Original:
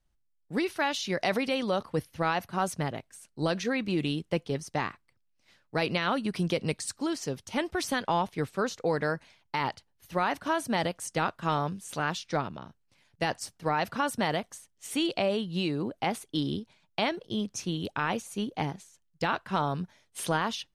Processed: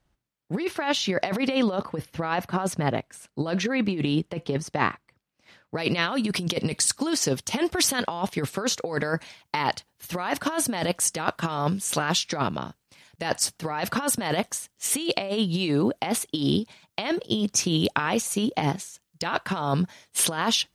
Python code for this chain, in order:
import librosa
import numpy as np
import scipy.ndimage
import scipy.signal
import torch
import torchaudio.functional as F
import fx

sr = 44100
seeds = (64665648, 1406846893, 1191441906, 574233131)

y = fx.high_shelf(x, sr, hz=3900.0, db=fx.steps((0.0, -9.0), (5.77, 4.0)))
y = fx.over_compress(y, sr, threshold_db=-31.0, ratio=-0.5)
y = fx.highpass(y, sr, hz=100.0, slope=6)
y = y * 10.0 ** (8.0 / 20.0)